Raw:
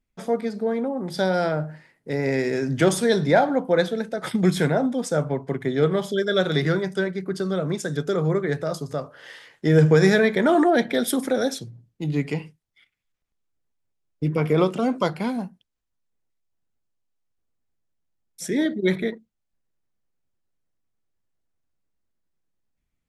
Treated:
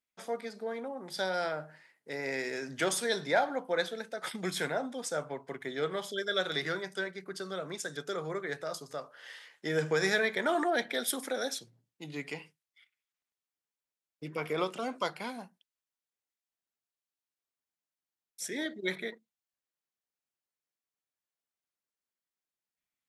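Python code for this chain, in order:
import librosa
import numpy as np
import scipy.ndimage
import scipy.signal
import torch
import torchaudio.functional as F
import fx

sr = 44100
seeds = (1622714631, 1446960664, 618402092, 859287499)

y = fx.highpass(x, sr, hz=1100.0, slope=6)
y = F.gain(torch.from_numpy(y), -4.0).numpy()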